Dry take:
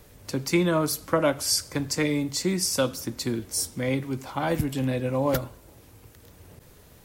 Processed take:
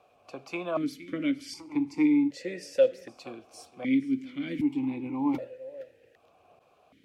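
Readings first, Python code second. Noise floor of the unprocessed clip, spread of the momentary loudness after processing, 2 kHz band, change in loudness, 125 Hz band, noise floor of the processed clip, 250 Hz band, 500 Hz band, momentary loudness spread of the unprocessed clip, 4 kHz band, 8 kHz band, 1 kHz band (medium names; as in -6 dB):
-53 dBFS, 19 LU, -7.5 dB, -3.0 dB, -16.0 dB, -64 dBFS, +0.5 dB, -4.0 dB, 7 LU, -15.0 dB, under -20 dB, -9.5 dB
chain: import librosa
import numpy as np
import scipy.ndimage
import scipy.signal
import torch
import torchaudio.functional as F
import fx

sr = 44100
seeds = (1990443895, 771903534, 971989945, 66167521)

p1 = x + fx.echo_single(x, sr, ms=466, db=-19.0, dry=0)
p2 = fx.vowel_held(p1, sr, hz=1.3)
y = F.gain(torch.from_numpy(p2), 6.0).numpy()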